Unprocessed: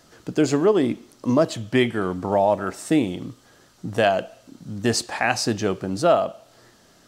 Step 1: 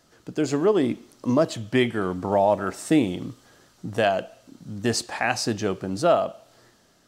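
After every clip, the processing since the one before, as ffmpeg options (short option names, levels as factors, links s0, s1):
-af "dynaudnorm=f=130:g=9:m=3.76,volume=0.473"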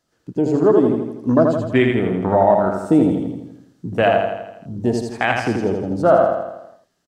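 -filter_complex "[0:a]afwtdn=0.0447,asplit=2[s0][s1];[s1]aecho=0:1:82|164|246|328|410|492|574:0.631|0.347|0.191|0.105|0.0577|0.0318|0.0175[s2];[s0][s2]amix=inputs=2:normalize=0,volume=1.78"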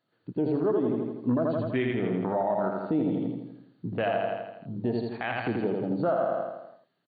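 -af "afftfilt=real='re*between(b*sr/4096,100,4600)':imag='im*between(b*sr/4096,100,4600)':win_size=4096:overlap=0.75,alimiter=limit=0.251:level=0:latency=1:release=170,volume=0.531"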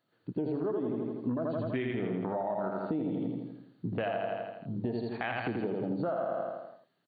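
-af "acompressor=threshold=0.0355:ratio=6"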